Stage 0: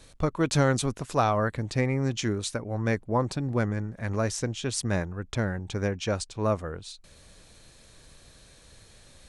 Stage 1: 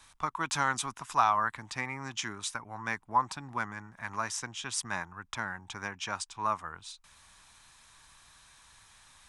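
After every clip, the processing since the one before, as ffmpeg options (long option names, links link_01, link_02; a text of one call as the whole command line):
ffmpeg -i in.wav -filter_complex "[0:a]lowshelf=frequency=700:width_type=q:width=3:gain=-10.5,bandreject=frequency=4300:width=11,acrossover=split=150[link_01][link_02];[link_01]acompressor=threshold=-52dB:ratio=6[link_03];[link_03][link_02]amix=inputs=2:normalize=0,volume=-2dB" out.wav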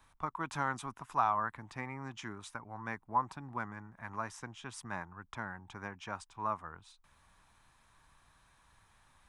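ffmpeg -i in.wav -af "equalizer=frequency=6200:width=0.34:gain=-14.5,volume=-1.5dB" out.wav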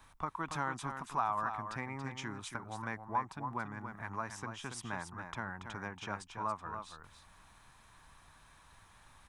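ffmpeg -i in.wav -af "acompressor=threshold=-49dB:ratio=1.5,aecho=1:1:281:0.422,volume=5dB" out.wav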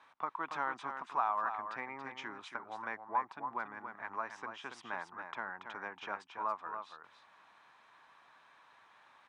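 ffmpeg -i in.wav -af "highpass=410,lowpass=3200,volume=1dB" out.wav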